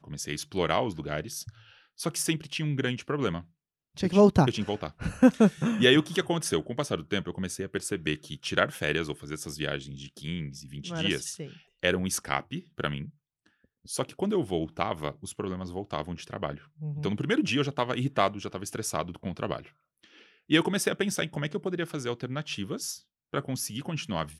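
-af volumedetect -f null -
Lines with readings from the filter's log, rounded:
mean_volume: -29.6 dB
max_volume: -6.4 dB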